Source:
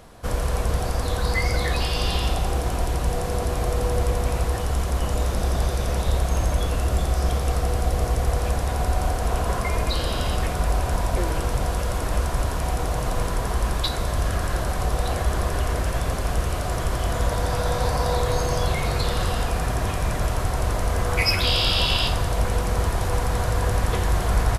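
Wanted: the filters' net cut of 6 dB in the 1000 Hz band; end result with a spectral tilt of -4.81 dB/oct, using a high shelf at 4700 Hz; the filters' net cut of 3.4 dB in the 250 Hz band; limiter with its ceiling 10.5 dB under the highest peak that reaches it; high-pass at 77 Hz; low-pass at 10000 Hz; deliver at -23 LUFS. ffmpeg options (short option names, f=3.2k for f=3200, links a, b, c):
-af "highpass=77,lowpass=10k,equalizer=f=250:t=o:g=-4.5,equalizer=f=1k:t=o:g=-8,highshelf=f=4.7k:g=-4.5,volume=8.5dB,alimiter=limit=-13.5dB:level=0:latency=1"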